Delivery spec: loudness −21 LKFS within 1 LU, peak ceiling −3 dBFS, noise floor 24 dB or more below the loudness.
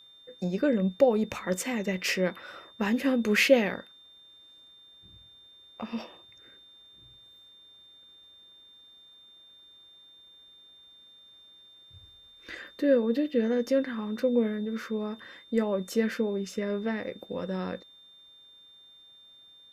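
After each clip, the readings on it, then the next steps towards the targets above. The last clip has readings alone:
interfering tone 3,600 Hz; level of the tone −52 dBFS; integrated loudness −28.0 LKFS; sample peak −8.5 dBFS; target loudness −21.0 LKFS
→ notch filter 3,600 Hz, Q 30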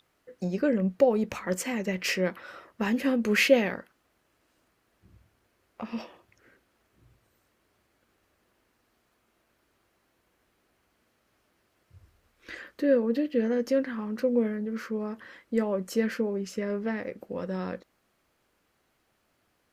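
interfering tone none found; integrated loudness −28.0 LKFS; sample peak −8.5 dBFS; target loudness −21.0 LKFS
→ level +7 dB
brickwall limiter −3 dBFS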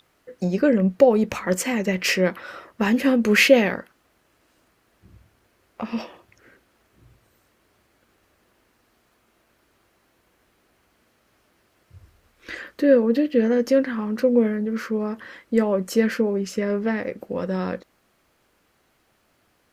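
integrated loudness −21.5 LKFS; sample peak −3.0 dBFS; background noise floor −66 dBFS

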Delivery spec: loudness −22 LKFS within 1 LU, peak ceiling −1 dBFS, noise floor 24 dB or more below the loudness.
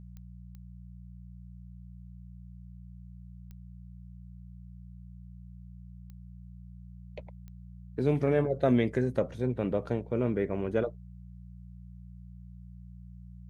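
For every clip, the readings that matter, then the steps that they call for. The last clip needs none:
number of clicks 5; mains hum 60 Hz; hum harmonics up to 180 Hz; level of the hum −44 dBFS; integrated loudness −29.5 LKFS; sample peak −14.0 dBFS; target loudness −22.0 LKFS
→ click removal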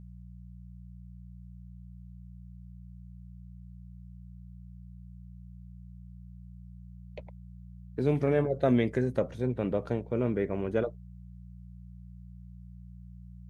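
number of clicks 0; mains hum 60 Hz; hum harmonics up to 180 Hz; level of the hum −44 dBFS
→ hum removal 60 Hz, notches 3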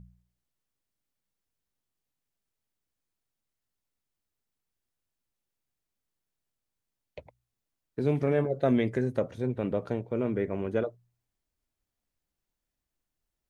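mains hum none found; integrated loudness −29.5 LKFS; sample peak −13.5 dBFS; target loudness −22.0 LKFS
→ level +7.5 dB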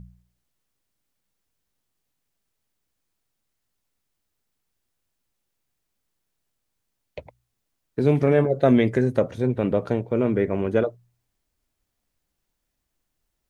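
integrated loudness −22.0 LKFS; sample peak −6.0 dBFS; background noise floor −79 dBFS

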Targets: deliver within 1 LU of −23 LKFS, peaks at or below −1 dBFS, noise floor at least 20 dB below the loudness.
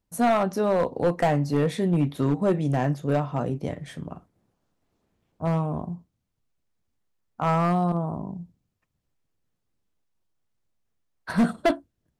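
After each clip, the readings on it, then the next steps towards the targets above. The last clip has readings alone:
share of clipped samples 1.2%; peaks flattened at −15.5 dBFS; integrated loudness −25.0 LKFS; sample peak −15.5 dBFS; target loudness −23.0 LKFS
→ clipped peaks rebuilt −15.5 dBFS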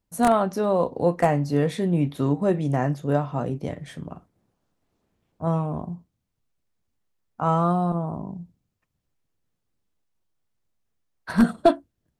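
share of clipped samples 0.0%; integrated loudness −24.0 LKFS; sample peak −6.5 dBFS; target loudness −23.0 LKFS
→ level +1 dB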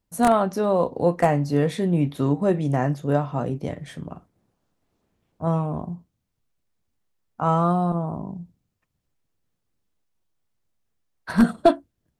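integrated loudness −23.0 LKFS; sample peak −5.5 dBFS; background noise floor −77 dBFS

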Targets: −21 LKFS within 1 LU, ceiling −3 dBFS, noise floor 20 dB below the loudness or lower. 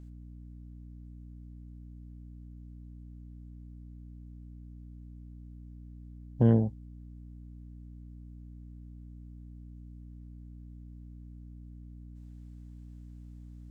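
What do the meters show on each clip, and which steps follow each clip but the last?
mains hum 60 Hz; hum harmonics up to 300 Hz; level of the hum −44 dBFS; integrated loudness −27.0 LKFS; sample peak −11.5 dBFS; target loudness −21.0 LKFS
→ mains-hum notches 60/120/180/240/300 Hz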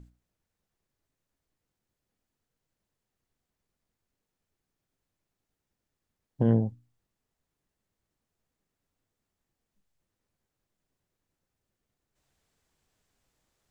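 mains hum none found; integrated loudness −27.0 LKFS; sample peak −11.5 dBFS; target loudness −21.0 LKFS
→ level +6 dB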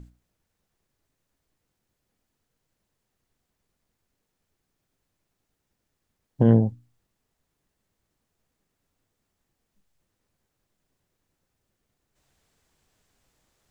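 integrated loudness −21.0 LKFS; sample peak −5.5 dBFS; background noise floor −80 dBFS

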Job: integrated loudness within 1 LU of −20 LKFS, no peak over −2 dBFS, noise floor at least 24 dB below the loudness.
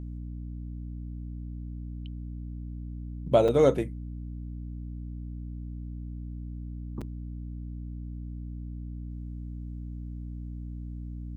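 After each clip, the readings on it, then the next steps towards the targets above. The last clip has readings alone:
number of dropouts 2; longest dropout 5.6 ms; mains hum 60 Hz; hum harmonics up to 300 Hz; level of the hum −35 dBFS; integrated loudness −33.5 LKFS; sample peak −8.0 dBFS; target loudness −20.0 LKFS
→ repair the gap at 0:03.48/0:07.01, 5.6 ms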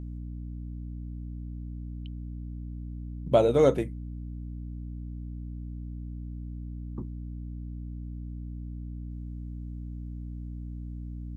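number of dropouts 0; mains hum 60 Hz; hum harmonics up to 300 Hz; level of the hum −35 dBFS
→ mains-hum notches 60/120/180/240/300 Hz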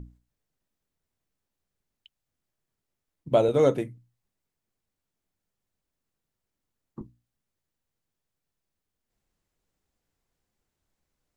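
mains hum none found; integrated loudness −23.5 LKFS; sample peak −8.5 dBFS; target loudness −20.0 LKFS
→ level +3.5 dB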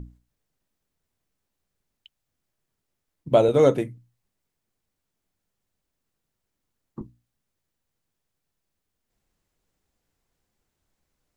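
integrated loudness −20.0 LKFS; sample peak −5.0 dBFS; background noise floor −82 dBFS

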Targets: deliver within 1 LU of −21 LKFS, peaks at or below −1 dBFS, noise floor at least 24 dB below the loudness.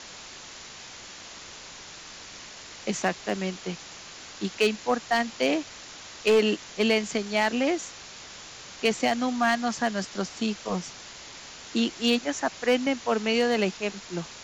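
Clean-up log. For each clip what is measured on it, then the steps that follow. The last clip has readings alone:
share of clipped samples 0.3%; peaks flattened at −14.5 dBFS; background noise floor −44 dBFS; target noise floor −51 dBFS; integrated loudness −26.5 LKFS; sample peak −14.5 dBFS; target loudness −21.0 LKFS
→ clipped peaks rebuilt −14.5 dBFS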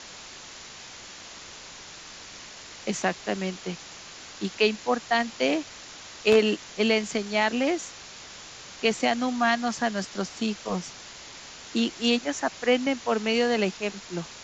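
share of clipped samples 0.0%; background noise floor −44 dBFS; target noise floor −51 dBFS
→ broadband denoise 7 dB, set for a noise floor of −44 dBFS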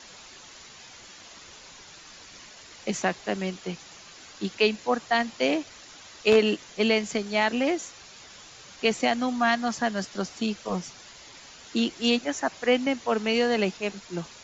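background noise floor −48 dBFS; target noise floor −51 dBFS
→ broadband denoise 6 dB, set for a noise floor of −48 dBFS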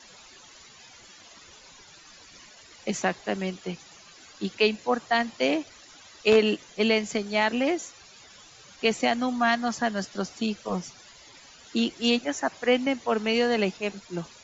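background noise floor −51 dBFS; integrated loudness −26.5 LKFS; sample peak −5.5 dBFS; target loudness −21.0 LKFS
→ level +5.5 dB
brickwall limiter −1 dBFS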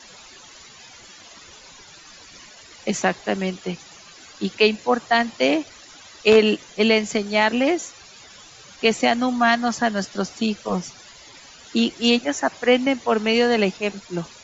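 integrated loudness −21.0 LKFS; sample peak −1.0 dBFS; background noise floor −46 dBFS

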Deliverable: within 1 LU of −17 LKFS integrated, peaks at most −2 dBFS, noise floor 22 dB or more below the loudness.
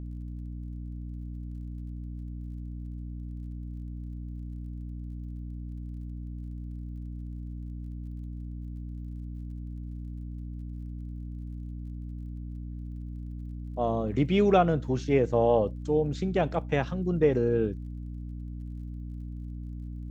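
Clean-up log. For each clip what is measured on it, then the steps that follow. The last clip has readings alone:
crackle rate 34 per second; mains hum 60 Hz; hum harmonics up to 300 Hz; level of the hum −35 dBFS; integrated loudness −32.5 LKFS; sample peak −9.0 dBFS; target loudness −17.0 LKFS
→ click removal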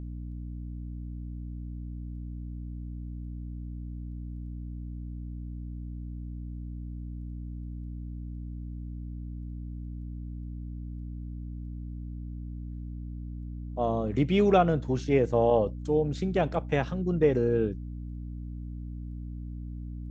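crackle rate 0.050 per second; mains hum 60 Hz; hum harmonics up to 300 Hz; level of the hum −35 dBFS
→ hum removal 60 Hz, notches 5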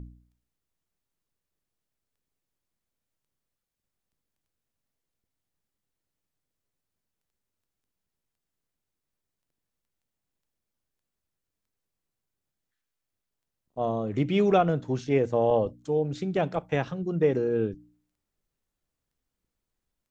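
mains hum none found; integrated loudness −26.5 LKFS; sample peak −9.5 dBFS; target loudness −17.0 LKFS
→ level +9.5 dB
brickwall limiter −2 dBFS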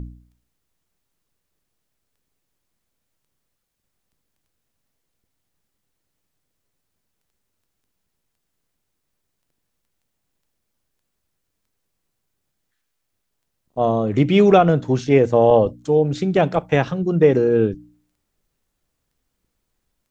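integrated loudness −17.0 LKFS; sample peak −2.0 dBFS; background noise floor −76 dBFS

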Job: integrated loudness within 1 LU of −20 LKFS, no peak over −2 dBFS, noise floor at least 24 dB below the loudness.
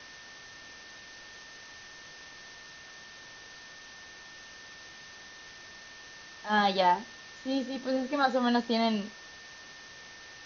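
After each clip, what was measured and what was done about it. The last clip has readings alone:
interfering tone 1,800 Hz; level of the tone −50 dBFS; background noise floor −49 dBFS; target noise floor −53 dBFS; integrated loudness −29.0 LKFS; sample peak −12.0 dBFS; target loudness −20.0 LKFS
→ notch filter 1,800 Hz, Q 30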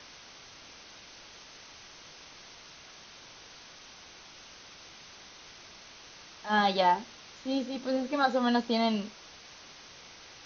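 interfering tone none found; background noise floor −51 dBFS; target noise floor −53 dBFS
→ broadband denoise 6 dB, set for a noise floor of −51 dBFS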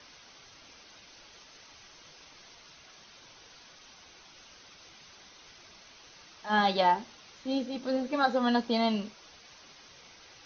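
background noise floor −55 dBFS; integrated loudness −29.0 LKFS; sample peak −12.0 dBFS; target loudness −20.0 LKFS
→ level +9 dB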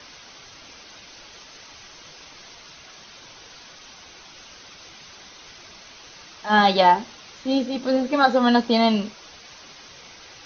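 integrated loudness −20.0 LKFS; sample peak −3.0 dBFS; background noise floor −46 dBFS

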